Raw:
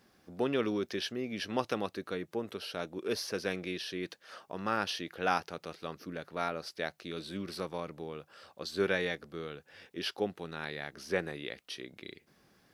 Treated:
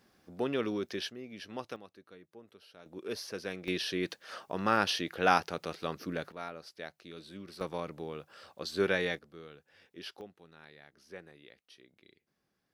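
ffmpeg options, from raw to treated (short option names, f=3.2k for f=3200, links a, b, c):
-af "asetnsamples=n=441:p=0,asendcmd='1.1 volume volume -8.5dB;1.76 volume volume -17dB;2.86 volume volume -4.5dB;3.68 volume volume 4.5dB;6.32 volume volume -7.5dB;7.61 volume volume 1dB;9.19 volume volume -8.5dB;10.21 volume volume -15.5dB',volume=-1.5dB"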